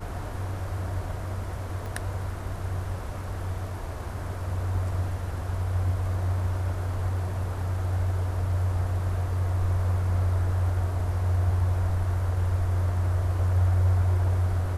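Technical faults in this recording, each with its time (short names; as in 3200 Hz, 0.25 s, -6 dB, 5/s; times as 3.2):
1.86 pop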